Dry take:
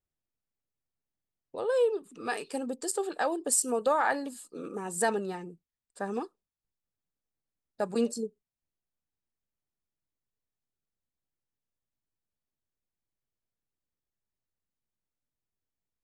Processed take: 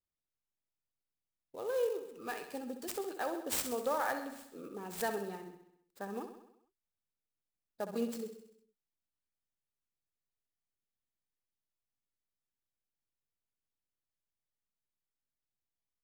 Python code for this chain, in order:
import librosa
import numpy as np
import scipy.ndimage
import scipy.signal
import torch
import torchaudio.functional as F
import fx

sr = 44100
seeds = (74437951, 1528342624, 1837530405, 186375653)

y = fx.echo_feedback(x, sr, ms=65, feedback_pct=58, wet_db=-9)
y = fx.clock_jitter(y, sr, seeds[0], jitter_ms=0.025)
y = y * 10.0 ** (-8.0 / 20.0)